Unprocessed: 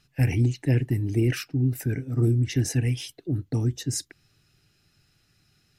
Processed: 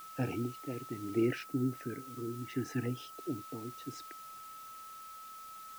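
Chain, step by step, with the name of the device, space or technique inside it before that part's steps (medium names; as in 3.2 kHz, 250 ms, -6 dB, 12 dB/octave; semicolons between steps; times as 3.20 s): shortwave radio (band-pass 280–2600 Hz; tremolo 0.68 Hz, depth 72%; LFO notch saw down 0.35 Hz 520–2300 Hz; whistle 1.3 kHz -47 dBFS; white noise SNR 18 dB); 1.26–3.18 s: dynamic bell 2.8 kHz, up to -5 dB, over -51 dBFS, Q 0.74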